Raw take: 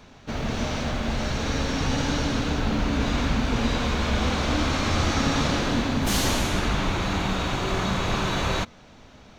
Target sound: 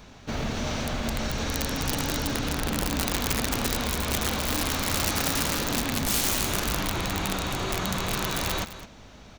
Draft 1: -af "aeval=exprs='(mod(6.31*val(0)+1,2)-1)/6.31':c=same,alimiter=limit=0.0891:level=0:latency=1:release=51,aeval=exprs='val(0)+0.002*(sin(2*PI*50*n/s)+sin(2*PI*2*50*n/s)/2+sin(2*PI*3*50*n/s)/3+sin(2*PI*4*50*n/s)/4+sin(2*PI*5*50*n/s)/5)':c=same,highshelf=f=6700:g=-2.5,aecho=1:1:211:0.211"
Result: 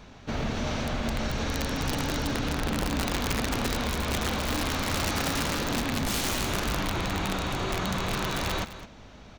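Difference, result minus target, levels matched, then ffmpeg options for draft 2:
8 kHz band -3.5 dB
-af "aeval=exprs='(mod(6.31*val(0)+1,2)-1)/6.31':c=same,alimiter=limit=0.0891:level=0:latency=1:release=51,aeval=exprs='val(0)+0.002*(sin(2*PI*50*n/s)+sin(2*PI*2*50*n/s)/2+sin(2*PI*3*50*n/s)/3+sin(2*PI*4*50*n/s)/4+sin(2*PI*5*50*n/s)/5)':c=same,highshelf=f=6700:g=7.5,aecho=1:1:211:0.211"

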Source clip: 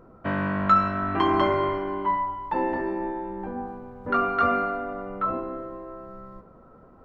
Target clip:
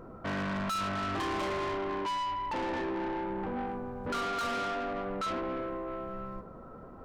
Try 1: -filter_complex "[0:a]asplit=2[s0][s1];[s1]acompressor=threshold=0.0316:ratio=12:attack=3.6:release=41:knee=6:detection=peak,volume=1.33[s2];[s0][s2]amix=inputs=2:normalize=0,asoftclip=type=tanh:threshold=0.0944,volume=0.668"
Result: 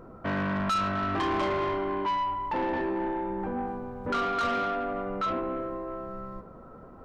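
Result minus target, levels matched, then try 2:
saturation: distortion -5 dB
-filter_complex "[0:a]asplit=2[s0][s1];[s1]acompressor=threshold=0.0316:ratio=12:attack=3.6:release=41:knee=6:detection=peak,volume=1.33[s2];[s0][s2]amix=inputs=2:normalize=0,asoftclip=type=tanh:threshold=0.0422,volume=0.668"

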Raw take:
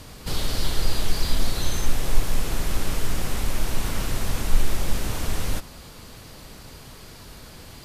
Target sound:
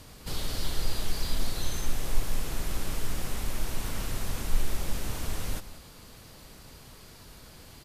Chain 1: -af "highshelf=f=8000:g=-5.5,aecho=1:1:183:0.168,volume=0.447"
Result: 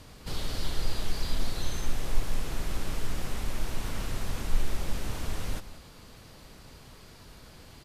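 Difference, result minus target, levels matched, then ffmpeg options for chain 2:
8 kHz band -3.0 dB
-af "highshelf=f=8000:g=3,aecho=1:1:183:0.168,volume=0.447"

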